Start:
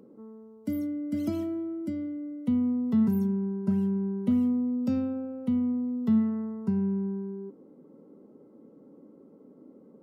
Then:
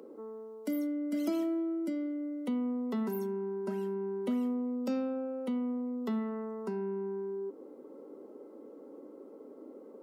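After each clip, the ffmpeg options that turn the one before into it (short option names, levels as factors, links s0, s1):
-filter_complex "[0:a]highpass=f=320:w=0.5412,highpass=f=320:w=1.3066,asplit=2[s0][s1];[s1]acompressor=threshold=0.00562:ratio=6,volume=1.26[s2];[s0][s2]amix=inputs=2:normalize=0"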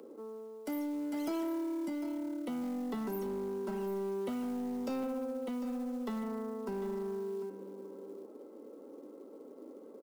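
-filter_complex "[0:a]aecho=1:1:749:0.251,acrusher=bits=7:mode=log:mix=0:aa=0.000001,acrossover=split=480|2200[s0][s1][s2];[s0]asoftclip=type=hard:threshold=0.0178[s3];[s3][s1][s2]amix=inputs=3:normalize=0,volume=0.891"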